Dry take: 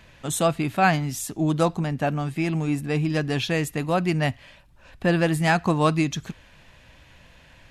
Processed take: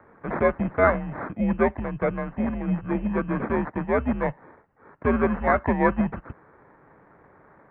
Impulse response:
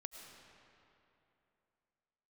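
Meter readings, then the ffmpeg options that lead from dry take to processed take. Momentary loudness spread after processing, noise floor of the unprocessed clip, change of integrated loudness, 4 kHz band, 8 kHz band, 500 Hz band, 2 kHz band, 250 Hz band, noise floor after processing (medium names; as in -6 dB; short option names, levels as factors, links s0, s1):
7 LU, -53 dBFS, -1.0 dB, under -20 dB, under -40 dB, +1.5 dB, -2.0 dB, -0.5 dB, -56 dBFS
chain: -af "acrusher=samples=15:mix=1:aa=0.000001,highpass=f=220:t=q:w=0.5412,highpass=f=220:t=q:w=1.307,lowpass=f=2100:t=q:w=0.5176,lowpass=f=2100:t=q:w=0.7071,lowpass=f=2100:t=q:w=1.932,afreqshift=-110,volume=1.19"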